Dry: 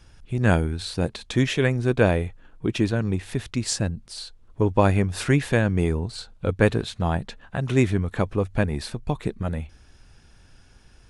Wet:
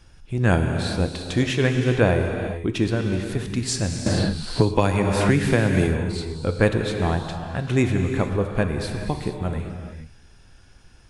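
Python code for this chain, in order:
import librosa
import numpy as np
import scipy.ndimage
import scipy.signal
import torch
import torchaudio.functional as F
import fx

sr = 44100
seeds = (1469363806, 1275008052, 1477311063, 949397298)

y = fx.rev_gated(x, sr, seeds[0], gate_ms=480, shape='flat', drr_db=4.0)
y = fx.band_squash(y, sr, depth_pct=100, at=(4.06, 5.87))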